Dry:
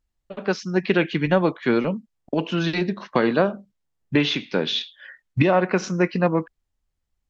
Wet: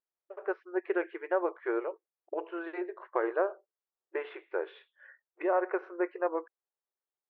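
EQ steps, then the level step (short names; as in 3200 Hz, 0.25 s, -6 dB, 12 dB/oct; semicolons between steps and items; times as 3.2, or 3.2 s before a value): brick-wall FIR high-pass 330 Hz; LPF 1700 Hz 24 dB/oct; -8.5 dB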